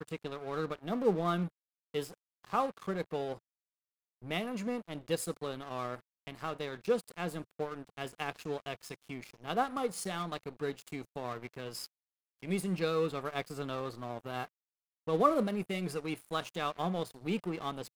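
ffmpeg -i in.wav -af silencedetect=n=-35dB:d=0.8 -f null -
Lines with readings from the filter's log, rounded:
silence_start: 3.34
silence_end: 4.30 | silence_duration: 0.96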